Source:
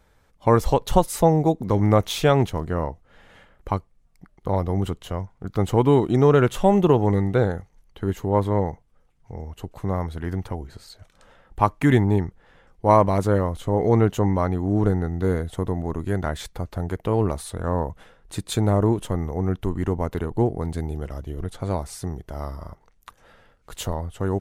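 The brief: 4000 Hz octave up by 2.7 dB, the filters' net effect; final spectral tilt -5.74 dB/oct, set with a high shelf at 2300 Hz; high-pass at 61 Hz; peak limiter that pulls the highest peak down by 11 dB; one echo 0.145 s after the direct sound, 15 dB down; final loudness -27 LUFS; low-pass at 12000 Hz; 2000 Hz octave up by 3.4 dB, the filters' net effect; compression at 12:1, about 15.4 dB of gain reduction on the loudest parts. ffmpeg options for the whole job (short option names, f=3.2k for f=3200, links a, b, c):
-af "highpass=61,lowpass=12k,equalizer=f=2k:t=o:g=6.5,highshelf=f=2.3k:g=-8,equalizer=f=4k:t=o:g=8,acompressor=threshold=-27dB:ratio=12,alimiter=level_in=2dB:limit=-24dB:level=0:latency=1,volume=-2dB,aecho=1:1:145:0.178,volume=10dB"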